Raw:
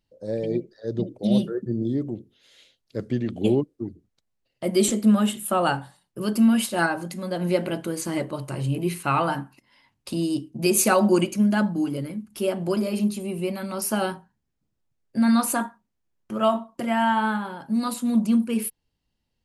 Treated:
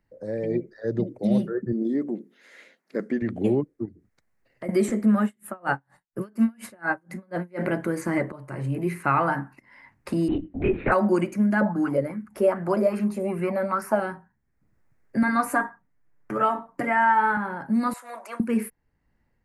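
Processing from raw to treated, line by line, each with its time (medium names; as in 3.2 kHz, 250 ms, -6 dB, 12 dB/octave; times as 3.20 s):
1.72–3.22 s: brick-wall FIR high-pass 160 Hz
3.85–4.69 s: compression 1.5:1, threshold -58 dBFS
5.24–7.64 s: logarithmic tremolo 4.2 Hz, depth 37 dB
8.32–9.10 s: fade in, from -17 dB
10.28–10.92 s: LPC vocoder at 8 kHz whisper
11.61–14.00 s: sweeping bell 2.5 Hz 520–1600 Hz +16 dB
15.22–17.37 s: comb 6.8 ms, depth 70%
17.93–18.40 s: inverse Chebyshev high-pass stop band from 180 Hz, stop band 60 dB
whole clip: level rider gain up to 8.5 dB; resonant high shelf 2.5 kHz -8.5 dB, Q 3; three bands compressed up and down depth 40%; trim -7.5 dB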